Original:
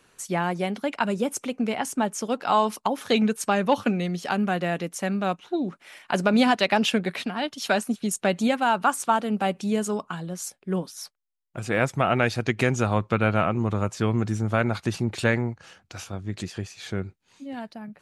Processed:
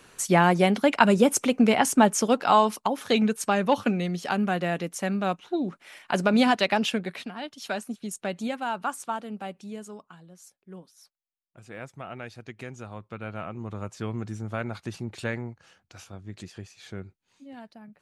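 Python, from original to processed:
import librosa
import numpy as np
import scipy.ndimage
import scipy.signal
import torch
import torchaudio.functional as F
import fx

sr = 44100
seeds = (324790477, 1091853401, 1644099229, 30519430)

y = fx.gain(x, sr, db=fx.line((2.15, 6.5), (2.83, -1.0), (6.59, -1.0), (7.36, -8.0), (8.93, -8.0), (10.25, -17.0), (12.98, -17.0), (13.94, -8.5)))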